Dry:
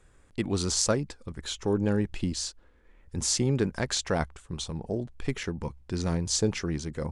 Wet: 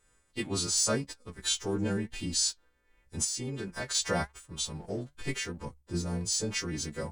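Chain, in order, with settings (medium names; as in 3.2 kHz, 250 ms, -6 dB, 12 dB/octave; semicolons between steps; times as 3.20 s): partials quantised in pitch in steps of 2 st; 5.65–6.21 s: peaking EQ 3.1 kHz -9.5 dB 2.8 oct; waveshaping leveller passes 1; peak limiter -13.5 dBFS, peak gain reduction 7 dB; 3.24–3.95 s: compression 6:1, threshold -26 dBFS, peak gain reduction 7.5 dB; flange 0.89 Hz, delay 3.2 ms, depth 4.1 ms, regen +75%; random flutter of the level, depth 50%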